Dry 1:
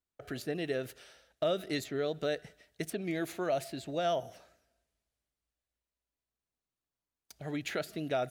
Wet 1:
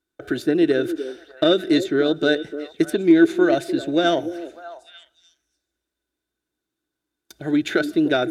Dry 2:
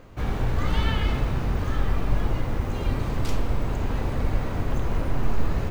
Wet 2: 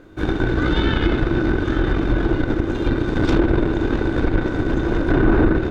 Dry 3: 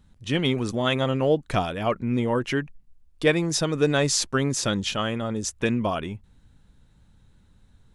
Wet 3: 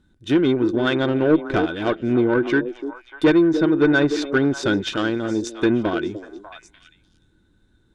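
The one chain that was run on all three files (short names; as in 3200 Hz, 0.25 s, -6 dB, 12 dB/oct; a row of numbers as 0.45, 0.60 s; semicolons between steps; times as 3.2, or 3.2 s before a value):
added harmonics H 5 -25 dB, 6 -18 dB, 7 -18 dB, 8 -23 dB, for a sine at -8 dBFS; in parallel at -1 dB: limiter -16 dBFS; on the sum: small resonant body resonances 330/1500/3600 Hz, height 16 dB, ringing for 40 ms; on a send: delay with a stepping band-pass 0.297 s, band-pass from 370 Hz, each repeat 1.4 oct, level -9 dB; on the sum: treble ducked by the level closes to 2300 Hz, closed at -9.5 dBFS; soft clip -5.5 dBFS; match loudness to -20 LUFS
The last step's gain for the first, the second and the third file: +9.0, +0.5, -3.0 dB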